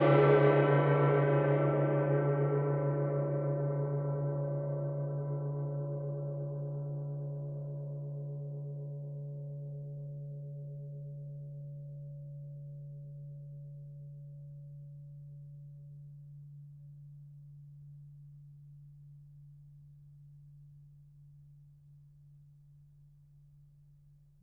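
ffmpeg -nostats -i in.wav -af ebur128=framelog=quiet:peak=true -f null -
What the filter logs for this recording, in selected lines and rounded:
Integrated loudness:
  I:         -33.1 LUFS
  Threshold: -46.1 LUFS
Loudness range:
  LRA:        25.1 LU
  Threshold: -58.3 LUFS
  LRA low:   -55.8 LUFS
  LRA high:  -30.7 LUFS
True peak:
  Peak:      -13.1 dBFS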